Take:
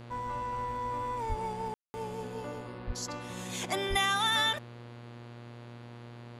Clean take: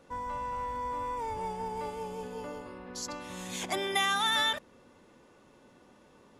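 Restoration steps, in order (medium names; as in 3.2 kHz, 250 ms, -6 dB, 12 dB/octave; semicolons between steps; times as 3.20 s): de-hum 119 Hz, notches 40; 1.28–1.40 s: high-pass 140 Hz 24 dB/octave; 2.86–2.98 s: high-pass 140 Hz 24 dB/octave; 3.89–4.01 s: high-pass 140 Hz 24 dB/octave; room tone fill 1.74–1.94 s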